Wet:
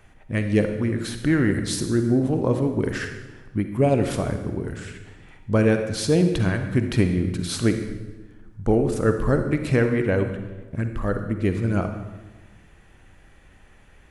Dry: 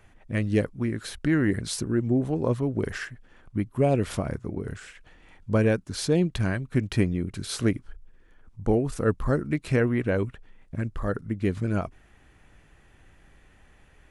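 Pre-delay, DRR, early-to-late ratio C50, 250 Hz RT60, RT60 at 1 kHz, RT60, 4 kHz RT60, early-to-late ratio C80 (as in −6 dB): 40 ms, 6.5 dB, 7.0 dB, 1.5 s, 1.1 s, 1.2 s, 1.0 s, 9.5 dB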